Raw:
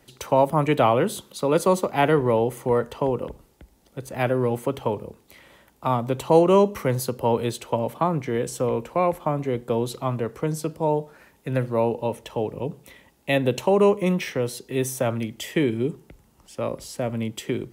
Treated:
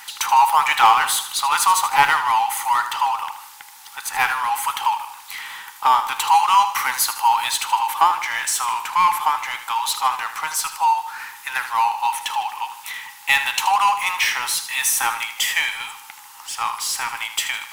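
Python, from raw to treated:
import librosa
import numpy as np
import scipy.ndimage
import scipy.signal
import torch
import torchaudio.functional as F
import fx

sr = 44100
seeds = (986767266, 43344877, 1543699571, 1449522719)

y = fx.brickwall_highpass(x, sr, low_hz=770.0)
y = fx.power_curve(y, sr, exponent=0.7)
y = fx.echo_feedback(y, sr, ms=78, feedback_pct=46, wet_db=-11.5)
y = y * 10.0 ** (6.5 / 20.0)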